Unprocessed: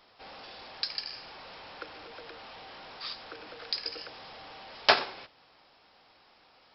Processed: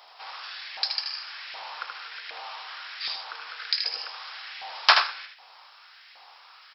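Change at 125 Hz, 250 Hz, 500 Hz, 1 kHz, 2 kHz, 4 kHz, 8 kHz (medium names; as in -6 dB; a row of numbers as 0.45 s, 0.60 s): under -20 dB, under -15 dB, -6.0 dB, +5.5 dB, +6.0 dB, +6.5 dB, no reading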